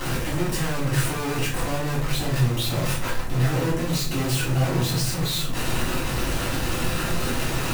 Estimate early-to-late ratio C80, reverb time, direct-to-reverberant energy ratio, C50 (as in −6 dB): 10.5 dB, 0.50 s, −8.5 dB, 5.0 dB